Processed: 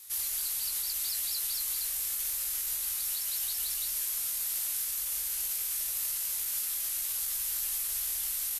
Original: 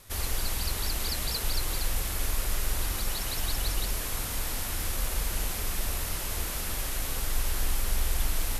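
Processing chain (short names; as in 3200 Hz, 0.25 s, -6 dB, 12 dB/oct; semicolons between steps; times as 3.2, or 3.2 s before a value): pre-emphasis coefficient 0.97; limiter -28.5 dBFS, peak gain reduction 7 dB; doubler 19 ms -5 dB; gain +4 dB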